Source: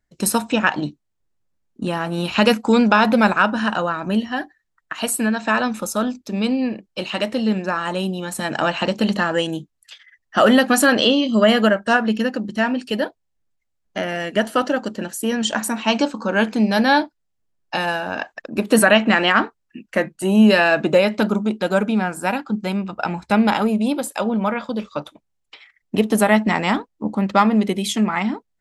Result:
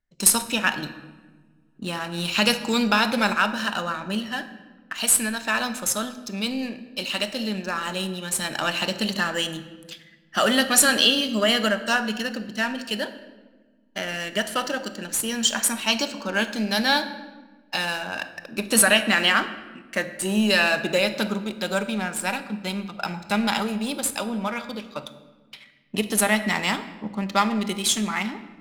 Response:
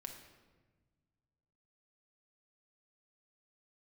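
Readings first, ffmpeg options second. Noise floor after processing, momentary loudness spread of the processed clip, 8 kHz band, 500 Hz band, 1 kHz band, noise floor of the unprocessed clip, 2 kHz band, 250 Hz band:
-57 dBFS, 14 LU, +5.5 dB, -8.0 dB, -6.0 dB, -73 dBFS, -3.0 dB, -8.5 dB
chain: -filter_complex "[0:a]crystalizer=i=8:c=0,adynamicsmooth=sensitivity=4:basefreq=2500,asplit=2[s0][s1];[1:a]atrim=start_sample=2205,lowshelf=f=170:g=7[s2];[s1][s2]afir=irnorm=-1:irlink=0,volume=1.68[s3];[s0][s3]amix=inputs=2:normalize=0,volume=0.158"

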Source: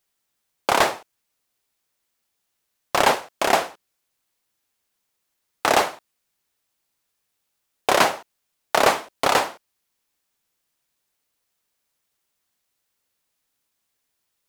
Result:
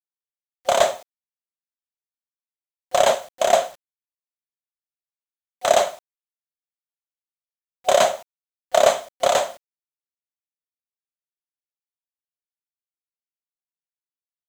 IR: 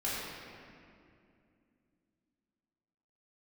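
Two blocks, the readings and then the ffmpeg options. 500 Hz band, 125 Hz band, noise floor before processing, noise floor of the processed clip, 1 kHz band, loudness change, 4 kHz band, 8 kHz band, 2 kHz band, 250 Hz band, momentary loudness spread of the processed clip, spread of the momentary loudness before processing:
+5.0 dB, no reading, -77 dBFS, under -85 dBFS, -1.0 dB, +1.0 dB, -1.0 dB, +2.0 dB, -5.5 dB, -8.5 dB, 10 LU, 11 LU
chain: -af "superequalizer=6b=0.447:8b=3.98:13b=2:15b=2.82,acrusher=bits=6:mix=0:aa=0.000001,volume=0.531"

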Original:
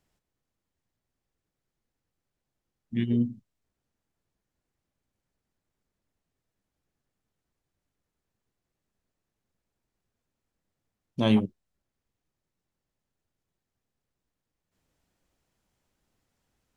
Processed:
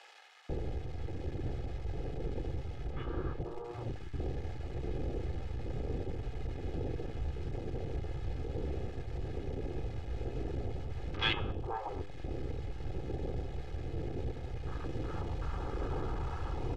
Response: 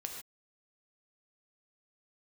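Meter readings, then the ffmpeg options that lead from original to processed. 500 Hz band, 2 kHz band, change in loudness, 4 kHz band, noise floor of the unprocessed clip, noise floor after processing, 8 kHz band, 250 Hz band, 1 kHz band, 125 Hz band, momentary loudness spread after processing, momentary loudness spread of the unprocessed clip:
+1.5 dB, +5.0 dB, -12.5 dB, +2.5 dB, under -85 dBFS, -43 dBFS, no reading, -9.5 dB, +5.0 dB, +3.0 dB, 4 LU, 13 LU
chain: -filter_complex "[0:a]aeval=exprs='val(0)+0.5*0.0299*sgn(val(0))':c=same,afwtdn=0.0126,lowpass=3100,afftfilt=real='re*lt(hypot(re,im),0.141)':imag='im*lt(hypot(re,im),0.141)':win_size=1024:overlap=0.75,aecho=1:1:2.4:0.6,bandreject=f=100.4:t=h:w=4,bandreject=f=200.8:t=h:w=4,bandreject=f=301.2:t=h:w=4,bandreject=f=401.6:t=h:w=4,bandreject=f=502:t=h:w=4,bandreject=f=602.4:t=h:w=4,bandreject=f=702.8:t=h:w=4,bandreject=f=803.2:t=h:w=4,bandreject=f=903.6:t=h:w=4,bandreject=f=1004:t=h:w=4,bandreject=f=1104.4:t=h:w=4,bandreject=f=1204.8:t=h:w=4,bandreject=f=1305.2:t=h:w=4,bandreject=f=1405.6:t=h:w=4,bandreject=f=1506:t=h:w=4,bandreject=f=1606.4:t=h:w=4,bandreject=f=1706.8:t=h:w=4,bandreject=f=1807.2:t=h:w=4,bandreject=f=1907.6:t=h:w=4,bandreject=f=2008:t=h:w=4,bandreject=f=2108.4:t=h:w=4,bandreject=f=2208.8:t=h:w=4,bandreject=f=2309.2:t=h:w=4,bandreject=f=2409.6:t=h:w=4,bandreject=f=2510:t=h:w=4,bandreject=f=2610.4:t=h:w=4,bandreject=f=2710.8:t=h:w=4,bandreject=f=2811.2:t=h:w=4,bandreject=f=2911.6:t=h:w=4,bandreject=f=3012:t=h:w=4,bandreject=f=3112.4:t=h:w=4,bandreject=f=3212.8:t=h:w=4,bandreject=f=3313.2:t=h:w=4,bandreject=f=3413.6:t=h:w=4,bandreject=f=3514:t=h:w=4,bandreject=f=3614.4:t=h:w=4,bandreject=f=3714.8:t=h:w=4,acrossover=split=150|730[s0][s1][s2];[s1]tremolo=f=1.1:d=0.78[s3];[s0][s3][s2]amix=inputs=3:normalize=0,acrossover=split=1000[s4][s5];[s4]adelay=490[s6];[s6][s5]amix=inputs=2:normalize=0,volume=1.68"

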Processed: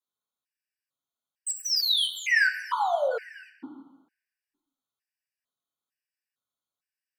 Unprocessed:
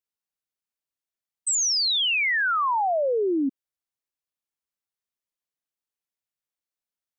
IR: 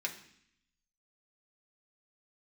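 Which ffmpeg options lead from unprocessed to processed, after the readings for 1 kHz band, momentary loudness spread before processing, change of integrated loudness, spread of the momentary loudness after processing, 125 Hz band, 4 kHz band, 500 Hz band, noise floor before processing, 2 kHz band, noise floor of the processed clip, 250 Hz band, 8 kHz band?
-5.0 dB, 7 LU, -2.5 dB, 11 LU, no reading, -2.0 dB, -5.0 dB, under -85 dBFS, -0.5 dB, under -85 dBFS, -18.5 dB, -8.5 dB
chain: -filter_complex "[0:a]volume=21.1,asoftclip=hard,volume=0.0473[s0];[1:a]atrim=start_sample=2205,asetrate=30870,aresample=44100[s1];[s0][s1]afir=irnorm=-1:irlink=0,afftfilt=real='re*gt(sin(2*PI*1.1*pts/sr)*(1-2*mod(floor(b*sr/1024/1500),2)),0)':imag='im*gt(sin(2*PI*1.1*pts/sr)*(1-2*mod(floor(b*sr/1024/1500),2)),0)':win_size=1024:overlap=0.75"

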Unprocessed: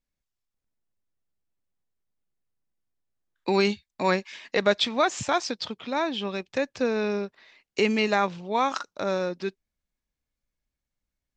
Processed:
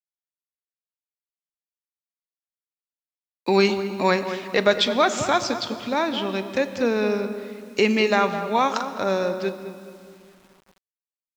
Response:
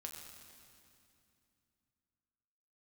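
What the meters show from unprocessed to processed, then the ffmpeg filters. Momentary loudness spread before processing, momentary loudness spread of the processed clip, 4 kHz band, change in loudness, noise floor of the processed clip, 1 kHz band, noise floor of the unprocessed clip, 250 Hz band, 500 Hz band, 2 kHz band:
9 LU, 11 LU, +3.5 dB, +4.0 dB, under -85 dBFS, +4.0 dB, under -85 dBFS, +4.0 dB, +4.5 dB, +4.0 dB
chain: -filter_complex "[0:a]asplit=2[s0][s1];[s1]adelay=210,lowpass=f=1100:p=1,volume=0.355,asplit=2[s2][s3];[s3]adelay=210,lowpass=f=1100:p=1,volume=0.44,asplit=2[s4][s5];[s5]adelay=210,lowpass=f=1100:p=1,volume=0.44,asplit=2[s6][s7];[s7]adelay=210,lowpass=f=1100:p=1,volume=0.44,asplit=2[s8][s9];[s9]adelay=210,lowpass=f=1100:p=1,volume=0.44[s10];[s0][s2][s4][s6][s8][s10]amix=inputs=6:normalize=0,asplit=2[s11][s12];[1:a]atrim=start_sample=2205[s13];[s12][s13]afir=irnorm=-1:irlink=0,volume=0.944[s14];[s11][s14]amix=inputs=2:normalize=0,acrusher=bits=8:mix=0:aa=0.000001"

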